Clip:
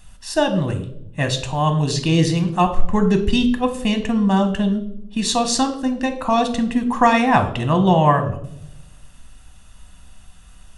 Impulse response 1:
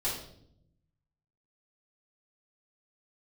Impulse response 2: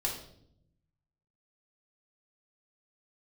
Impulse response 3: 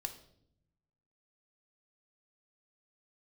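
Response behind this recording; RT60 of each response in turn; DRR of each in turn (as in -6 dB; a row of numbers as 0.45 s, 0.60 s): 3; 0.70 s, 0.70 s, 0.70 s; -9.5 dB, -2.5 dB, 6.0 dB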